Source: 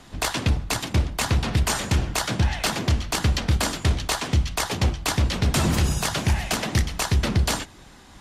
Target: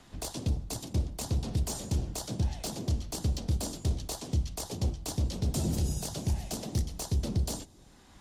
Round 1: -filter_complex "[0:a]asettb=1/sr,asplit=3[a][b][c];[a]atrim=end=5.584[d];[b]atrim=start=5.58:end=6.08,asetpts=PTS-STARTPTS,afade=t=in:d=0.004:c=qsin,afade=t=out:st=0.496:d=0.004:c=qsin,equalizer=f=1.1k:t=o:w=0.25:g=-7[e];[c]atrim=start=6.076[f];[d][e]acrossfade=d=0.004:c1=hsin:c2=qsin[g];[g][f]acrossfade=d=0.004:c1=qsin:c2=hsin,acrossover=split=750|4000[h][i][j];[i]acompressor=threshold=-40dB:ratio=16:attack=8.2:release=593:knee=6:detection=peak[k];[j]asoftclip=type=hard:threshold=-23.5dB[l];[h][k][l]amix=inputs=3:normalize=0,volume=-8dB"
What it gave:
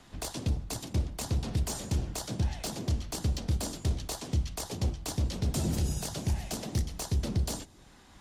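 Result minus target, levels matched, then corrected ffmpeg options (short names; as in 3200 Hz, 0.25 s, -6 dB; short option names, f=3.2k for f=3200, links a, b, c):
compressor: peak gain reduction -8.5 dB
-filter_complex "[0:a]asettb=1/sr,asplit=3[a][b][c];[a]atrim=end=5.584[d];[b]atrim=start=5.58:end=6.08,asetpts=PTS-STARTPTS,afade=t=in:d=0.004:c=qsin,afade=t=out:st=0.496:d=0.004:c=qsin,equalizer=f=1.1k:t=o:w=0.25:g=-7[e];[c]atrim=start=6.076[f];[d][e]acrossfade=d=0.004:c1=hsin:c2=qsin[g];[g][f]acrossfade=d=0.004:c1=qsin:c2=hsin,acrossover=split=750|4000[h][i][j];[i]acompressor=threshold=-49dB:ratio=16:attack=8.2:release=593:knee=6:detection=peak[k];[j]asoftclip=type=hard:threshold=-23.5dB[l];[h][k][l]amix=inputs=3:normalize=0,volume=-8dB"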